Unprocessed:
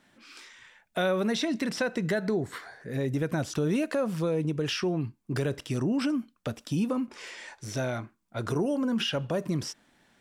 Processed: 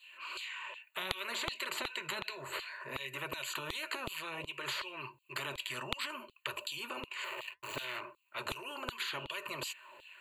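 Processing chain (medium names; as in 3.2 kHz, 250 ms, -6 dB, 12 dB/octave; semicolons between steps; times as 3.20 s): 7.24–8.01 s: hysteresis with a dead band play -35.5 dBFS; rippled EQ curve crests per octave 1.4, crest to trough 16 dB; flange 0.62 Hz, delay 1.6 ms, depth 6.3 ms, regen -70%; tone controls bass +11 dB, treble -10 dB; LFO high-pass saw down 2.7 Hz 530–4000 Hz; static phaser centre 1.1 kHz, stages 8; spectrum-flattening compressor 10:1; trim +2 dB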